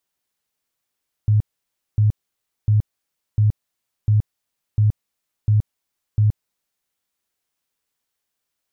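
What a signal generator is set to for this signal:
tone bursts 106 Hz, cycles 13, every 0.70 s, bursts 8, −12 dBFS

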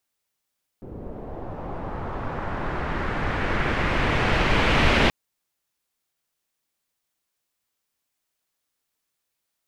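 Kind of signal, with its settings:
filter sweep on noise pink, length 4.28 s lowpass, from 390 Hz, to 2,800 Hz, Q 1.4, linear, gain ramp +18 dB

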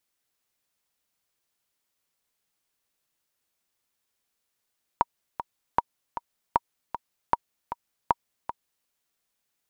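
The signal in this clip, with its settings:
click track 155 BPM, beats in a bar 2, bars 5, 948 Hz, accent 11 dB −6.5 dBFS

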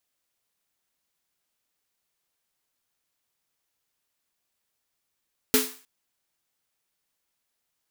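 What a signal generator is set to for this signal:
synth snare length 0.31 s, tones 260 Hz, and 430 Hz, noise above 850 Hz, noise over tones 1 dB, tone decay 0.30 s, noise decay 0.42 s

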